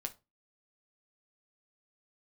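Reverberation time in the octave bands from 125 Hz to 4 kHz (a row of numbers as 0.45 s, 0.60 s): 0.40 s, 0.30 s, 0.30 s, 0.25 s, 0.20 s, 0.20 s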